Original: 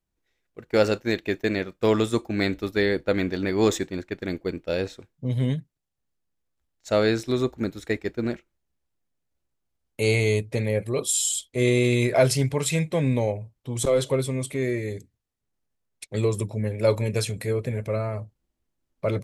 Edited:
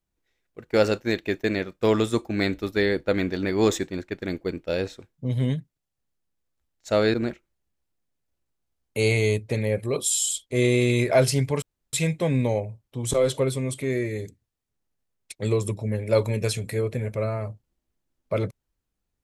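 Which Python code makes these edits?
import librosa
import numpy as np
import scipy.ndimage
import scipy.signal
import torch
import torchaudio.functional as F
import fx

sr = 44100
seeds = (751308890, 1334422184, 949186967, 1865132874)

y = fx.edit(x, sr, fx.cut(start_s=7.14, length_s=1.03),
    fx.insert_room_tone(at_s=12.65, length_s=0.31), tone=tone)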